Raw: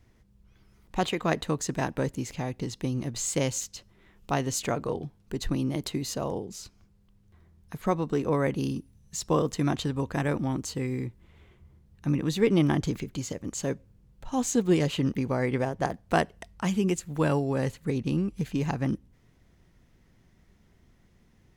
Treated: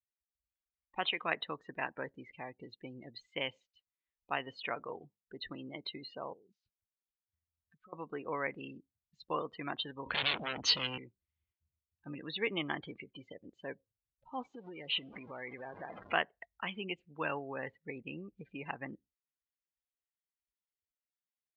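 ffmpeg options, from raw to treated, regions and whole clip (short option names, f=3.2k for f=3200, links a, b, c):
-filter_complex "[0:a]asettb=1/sr,asplit=3[a][b][c];[a]atrim=end=6.334[d];[b]atrim=start=6.33:end=7.93,asetpts=PTS-STARTPTS,afade=t=in:d=0.004:c=qsin,afade=t=out:st=1.596:d=0.004:c=qsin,equalizer=f=870:t=o:w=0.32:g=-10.5,acompressor=threshold=-44dB:ratio=5:attack=3.2:release=140:knee=1:detection=peak[e];[c]atrim=start=7.926[f];[d][e]acrossfade=d=0.004:c1=hsin:c2=qsin[g];[g][f]acrossfade=d=0.004:c1=qsin:c2=hsin,asettb=1/sr,asplit=3[h][i][j];[h]atrim=end=10.064[k];[i]atrim=start=10.06:end=10.98,asetpts=PTS-STARTPTS,afade=t=in:d=0.004:c=qsin,afade=t=out:st=0.916:d=0.004:c=qsin,aeval=exprs='0.2*sin(PI/2*5.62*val(0)/0.2)':c=same,acrossover=split=140|3000[l][m][n];[m]acompressor=threshold=-28dB:ratio=6:attack=3.2:release=140:knee=2.83:detection=peak[o];[l][o][n]amix=inputs=3:normalize=0[p];[j]atrim=start=10.976[q];[k][p]acrossfade=d=0.004:c1=hsin:c2=qsin[r];[r][q]acrossfade=d=0.004:c1=qsin:c2=hsin,asettb=1/sr,asplit=3[s][t][u];[s]atrim=end=14.454[v];[t]atrim=start=14.45:end=16.13,asetpts=PTS-STARTPTS,afade=t=in:d=0.004:c=qsin,afade=t=out:st=1.676:d=0.004:c=qsin,aeval=exprs='val(0)+0.5*0.0376*sgn(val(0))':c=same,equalizer=f=5.8k:t=o:w=1.3:g=3.5,acompressor=threshold=-28dB:ratio=16:attack=3.2:release=140:knee=1:detection=peak[w];[u]atrim=start=16.126[x];[v][w]acrossfade=d=0.004:c1=hsin:c2=qsin[y];[y][x]acrossfade=d=0.004:c1=qsin:c2=hsin,lowpass=f=3.4k:w=0.5412,lowpass=f=3.4k:w=1.3066,afftdn=nr=35:nf=-39,aderivative,volume=11dB"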